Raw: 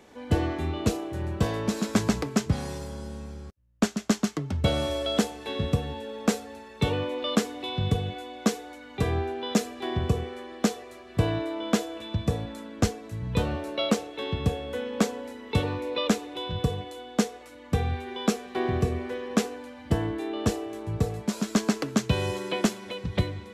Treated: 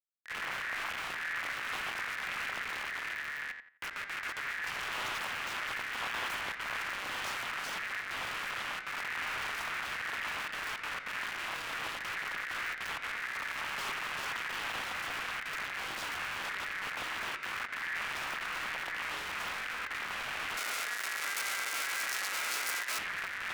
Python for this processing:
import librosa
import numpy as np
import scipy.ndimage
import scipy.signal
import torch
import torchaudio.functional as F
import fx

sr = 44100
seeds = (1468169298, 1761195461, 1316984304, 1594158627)

y = fx.fade_in_head(x, sr, length_s=1.4)
y = fx.fixed_phaser(y, sr, hz=2400.0, stages=4)
y = np.clip(y, -10.0 ** (-26.0 / 20.0), 10.0 ** (-26.0 / 20.0))
y = fx.step_gate(y, sr, bpm=198, pattern='xx.xxxxx.xxx.', floor_db=-12.0, edge_ms=4.5)
y = fx.peak_eq(y, sr, hz=2000.0, db=-10.0, octaves=1.5)
y = fx.doubler(y, sr, ms=20.0, db=-11.0)
y = fx.schmitt(y, sr, flips_db=-50.0)
y = scipy.signal.sosfilt(scipy.signal.butter(4, 67.0, 'highpass', fs=sr, output='sos'), y)
y = fx.echo_filtered(y, sr, ms=86, feedback_pct=28, hz=2100.0, wet_db=-7)
y = y * np.sin(2.0 * np.pi * 1800.0 * np.arange(len(y)) / sr)
y = fx.bass_treble(y, sr, bass_db=-13, treble_db=13, at=(20.57, 22.99))
y = fx.doppler_dist(y, sr, depth_ms=0.87)